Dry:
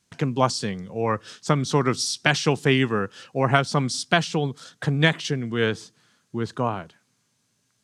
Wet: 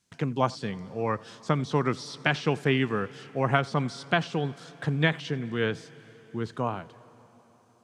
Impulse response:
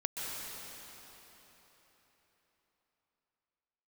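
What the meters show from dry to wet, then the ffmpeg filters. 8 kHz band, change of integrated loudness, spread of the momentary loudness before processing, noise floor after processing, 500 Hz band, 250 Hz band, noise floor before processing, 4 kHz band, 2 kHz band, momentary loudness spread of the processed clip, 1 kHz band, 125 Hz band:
-16.0 dB, -5.0 dB, 10 LU, -60 dBFS, -4.5 dB, -4.5 dB, -70 dBFS, -8.5 dB, -5.0 dB, 10 LU, -4.5 dB, -4.5 dB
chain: -filter_complex "[0:a]acrossover=split=3700[s0][s1];[s1]acompressor=threshold=0.00562:ratio=4:attack=1:release=60[s2];[s0][s2]amix=inputs=2:normalize=0,asplit=2[s3][s4];[1:a]atrim=start_sample=2205,adelay=88[s5];[s4][s5]afir=irnorm=-1:irlink=0,volume=0.0708[s6];[s3][s6]amix=inputs=2:normalize=0,volume=0.596"

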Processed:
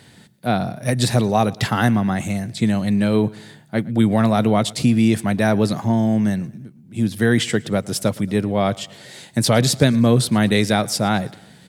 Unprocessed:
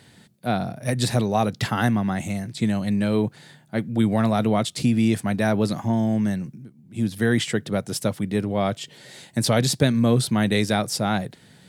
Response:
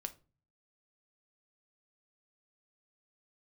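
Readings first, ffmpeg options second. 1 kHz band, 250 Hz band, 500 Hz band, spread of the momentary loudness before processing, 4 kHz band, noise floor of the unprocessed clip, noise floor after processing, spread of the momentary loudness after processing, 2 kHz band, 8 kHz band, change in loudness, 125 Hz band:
+4.0 dB, +4.0 dB, +4.0 dB, 10 LU, +4.0 dB, -53 dBFS, -48 dBFS, 9 LU, +4.0 dB, +4.0 dB, +4.0 dB, +4.0 dB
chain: -af "aecho=1:1:113|226|339:0.0708|0.0368|0.0191,volume=1.58"

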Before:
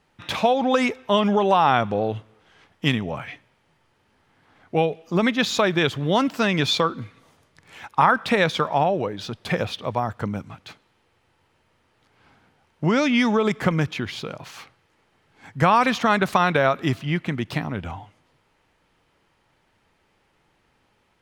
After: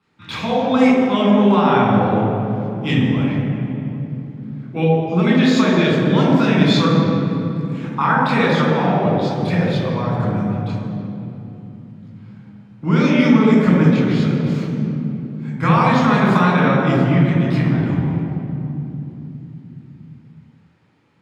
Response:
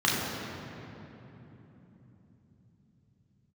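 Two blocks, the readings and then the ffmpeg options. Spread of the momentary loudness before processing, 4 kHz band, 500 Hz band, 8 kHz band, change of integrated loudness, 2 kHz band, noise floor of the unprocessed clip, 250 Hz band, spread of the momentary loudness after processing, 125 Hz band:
15 LU, +0.5 dB, +4.0 dB, no reading, +5.0 dB, +2.5 dB, -66 dBFS, +10.0 dB, 15 LU, +11.5 dB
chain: -filter_complex "[0:a]lowshelf=f=170:g=3.5[s0];[1:a]atrim=start_sample=2205,asetrate=52920,aresample=44100[s1];[s0][s1]afir=irnorm=-1:irlink=0,volume=0.266"

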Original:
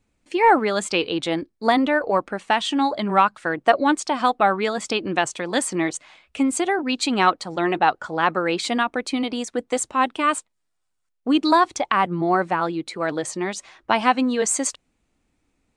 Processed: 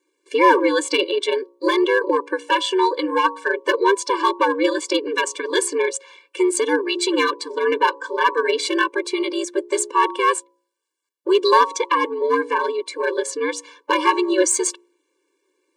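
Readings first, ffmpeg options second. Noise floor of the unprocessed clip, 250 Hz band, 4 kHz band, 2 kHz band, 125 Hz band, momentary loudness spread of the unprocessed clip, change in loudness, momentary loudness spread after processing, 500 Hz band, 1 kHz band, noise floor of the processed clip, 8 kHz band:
-74 dBFS, -1.0 dB, +2.5 dB, +2.5 dB, under -30 dB, 8 LU, +1.5 dB, 7 LU, +4.5 dB, +0.5 dB, -72 dBFS, +3.0 dB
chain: -filter_complex "[0:a]bandreject=f=128:t=h:w=4,bandreject=f=256:t=h:w=4,bandreject=f=384:t=h:w=4,bandreject=f=512:t=h:w=4,bandreject=f=640:t=h:w=4,bandreject=f=768:t=h:w=4,bandreject=f=896:t=h:w=4,bandreject=f=1024:t=h:w=4,aeval=exprs='val(0)*sin(2*PI*95*n/s)':c=same,acrossover=split=240|4100[s0][s1][s2];[s0]alimiter=level_in=1.68:limit=0.0631:level=0:latency=1:release=106,volume=0.596[s3];[s3][s1][s2]amix=inputs=3:normalize=0,acrossover=split=170|3000[s4][s5][s6];[s4]acompressor=threshold=0.0708:ratio=4[s7];[s7][s5][s6]amix=inputs=3:normalize=0,asplit=2[s8][s9];[s9]aeval=exprs='0.15*(abs(mod(val(0)/0.15+3,4)-2)-1)':c=same,volume=0.355[s10];[s8][s10]amix=inputs=2:normalize=0,afftfilt=real='re*eq(mod(floor(b*sr/1024/300),2),1)':imag='im*eq(mod(floor(b*sr/1024/300),2),1)':win_size=1024:overlap=0.75,volume=2.11"

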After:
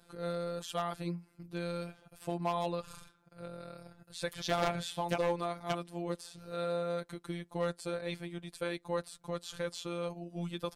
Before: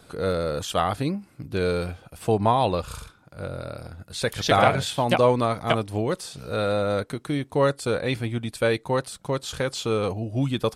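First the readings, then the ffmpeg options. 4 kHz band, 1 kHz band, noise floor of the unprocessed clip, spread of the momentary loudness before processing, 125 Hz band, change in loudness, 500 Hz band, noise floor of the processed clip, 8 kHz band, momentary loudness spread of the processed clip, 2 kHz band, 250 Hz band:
-12.0 dB, -13.0 dB, -56 dBFS, 14 LU, -14.5 dB, -12.5 dB, -12.5 dB, -68 dBFS, -11.5 dB, 13 LU, -13.0 dB, -12.0 dB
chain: -af "aeval=exprs='0.251*(abs(mod(val(0)/0.251+3,4)-2)-1)':c=same,afftfilt=real='hypot(re,im)*cos(PI*b)':imag='0':win_size=1024:overlap=0.75,volume=0.376"

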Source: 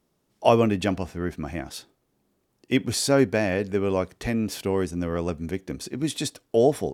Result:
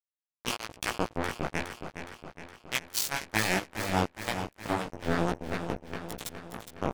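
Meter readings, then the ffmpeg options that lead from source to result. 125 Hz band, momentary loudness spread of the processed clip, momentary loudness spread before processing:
-7.5 dB, 14 LU, 12 LU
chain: -filter_complex "[0:a]afftfilt=real='re*lt(hypot(re,im),0.282)':imag='im*lt(hypot(re,im),0.282)':win_size=1024:overlap=0.75,anlmdn=0.00251,lowshelf=f=100:g=8,asplit=2[s0][s1];[s1]adynamicsmooth=sensitivity=6.5:basefreq=1300,volume=0.75[s2];[s0][s2]amix=inputs=2:normalize=0,acrusher=bits=2:mix=0:aa=0.5,flanger=delay=16:depth=4.4:speed=1.1,aecho=1:1:415|830|1245|1660|2075|2490|2905:0.355|0.206|0.119|0.0692|0.0402|0.0233|0.0135,adynamicequalizer=threshold=0.00398:dfrequency=6500:dqfactor=0.7:tfrequency=6500:tqfactor=0.7:attack=5:release=100:ratio=0.375:range=3:mode=boostabove:tftype=highshelf"

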